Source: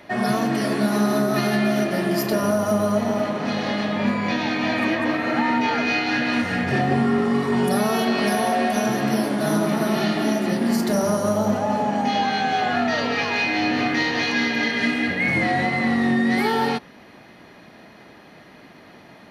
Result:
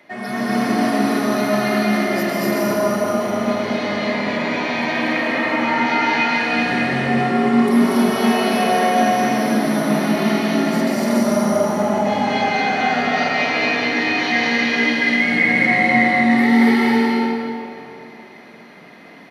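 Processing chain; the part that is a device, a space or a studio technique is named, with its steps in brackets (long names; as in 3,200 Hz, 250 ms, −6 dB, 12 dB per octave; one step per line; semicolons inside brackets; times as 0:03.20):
stadium PA (high-pass filter 170 Hz 12 dB per octave; parametric band 2,100 Hz +8 dB 0.2 octaves; loudspeakers that aren't time-aligned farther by 81 metres 0 dB, 97 metres −2 dB; convolution reverb RT60 2.8 s, pre-delay 118 ms, DRR −3 dB)
level −6 dB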